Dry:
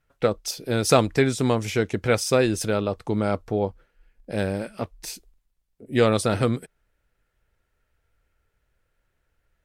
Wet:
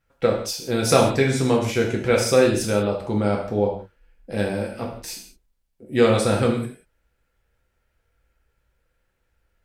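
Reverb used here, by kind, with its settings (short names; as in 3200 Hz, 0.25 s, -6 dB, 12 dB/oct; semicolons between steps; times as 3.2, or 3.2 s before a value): non-linear reverb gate 0.21 s falling, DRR -1 dB; gain -1.5 dB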